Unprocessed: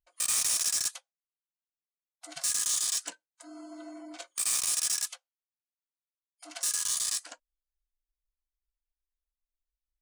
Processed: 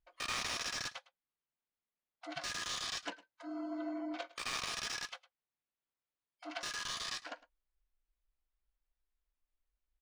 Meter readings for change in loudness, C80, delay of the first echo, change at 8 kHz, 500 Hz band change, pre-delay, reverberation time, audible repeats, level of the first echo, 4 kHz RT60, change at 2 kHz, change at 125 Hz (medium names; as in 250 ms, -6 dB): -11.5 dB, no reverb, 107 ms, -18.0 dB, +4.0 dB, no reverb, no reverb, 1, -19.5 dB, no reverb, +2.0 dB, no reading